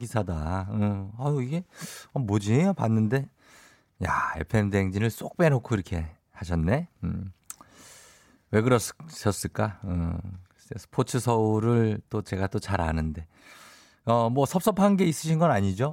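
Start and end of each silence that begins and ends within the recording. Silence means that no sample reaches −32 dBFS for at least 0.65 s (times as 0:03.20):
0:03.24–0:04.01
0:07.51–0:08.53
0:13.21–0:14.07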